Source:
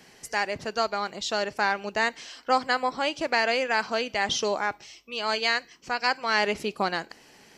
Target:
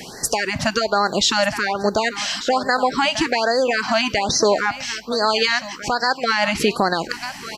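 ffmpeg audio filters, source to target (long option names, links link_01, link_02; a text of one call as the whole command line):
ffmpeg -i in.wav -af "acompressor=threshold=-28dB:ratio=6,aecho=1:1:1191:0.15,alimiter=level_in=24.5dB:limit=-1dB:release=50:level=0:latency=1,afftfilt=real='re*(1-between(b*sr/1024,380*pow(2900/380,0.5+0.5*sin(2*PI*1.2*pts/sr))/1.41,380*pow(2900/380,0.5+0.5*sin(2*PI*1.2*pts/sr))*1.41))':imag='im*(1-between(b*sr/1024,380*pow(2900/380,0.5+0.5*sin(2*PI*1.2*pts/sr))/1.41,380*pow(2900/380,0.5+0.5*sin(2*PI*1.2*pts/sr))*1.41))':win_size=1024:overlap=0.75,volume=-6dB" out.wav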